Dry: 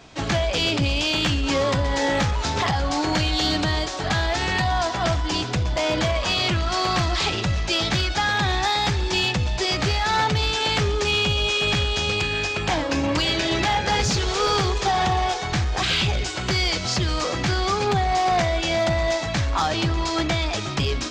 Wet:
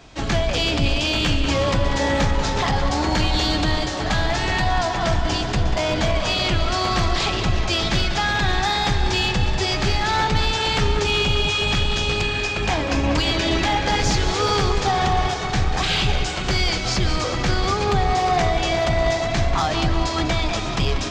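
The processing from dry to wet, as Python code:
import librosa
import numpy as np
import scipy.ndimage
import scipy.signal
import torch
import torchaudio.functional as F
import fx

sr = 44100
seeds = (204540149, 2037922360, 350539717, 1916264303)

y = fx.octave_divider(x, sr, octaves=2, level_db=1.0)
y = fx.echo_tape(y, sr, ms=191, feedback_pct=88, wet_db=-7.5, lp_hz=4200.0, drive_db=12.0, wow_cents=27)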